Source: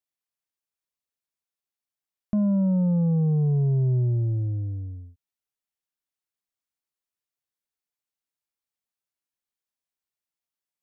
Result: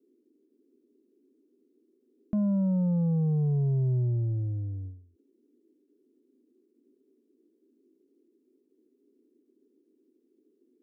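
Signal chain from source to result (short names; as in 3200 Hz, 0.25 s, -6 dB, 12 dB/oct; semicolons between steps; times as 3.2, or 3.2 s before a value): band noise 240–410 Hz -63 dBFS; ending taper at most 110 dB/s; gain -4 dB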